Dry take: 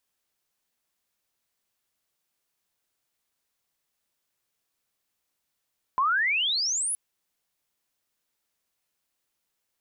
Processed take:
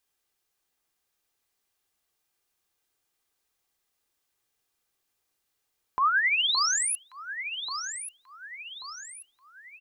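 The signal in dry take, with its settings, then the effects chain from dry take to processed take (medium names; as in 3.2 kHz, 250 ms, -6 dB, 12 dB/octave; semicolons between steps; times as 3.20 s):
sweep logarithmic 1 kHz -> 11 kHz -20 dBFS -> -25.5 dBFS 0.97 s
comb 2.5 ms, depth 34%; echo whose repeats swap between lows and highs 568 ms, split 1.6 kHz, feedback 66%, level -6 dB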